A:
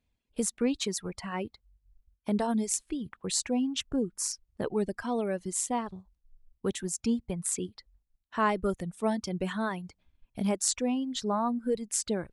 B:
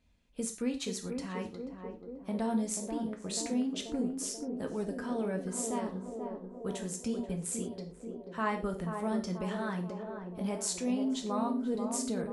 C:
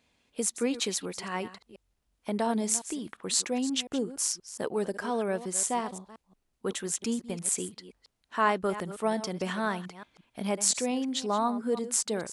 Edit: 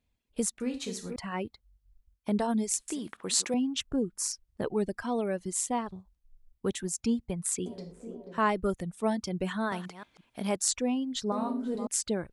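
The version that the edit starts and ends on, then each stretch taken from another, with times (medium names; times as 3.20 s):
A
0.60–1.16 s: from B
2.88–3.54 s: from C
7.66–8.38 s: from B
9.72–10.56 s: from C
11.32–11.87 s: from B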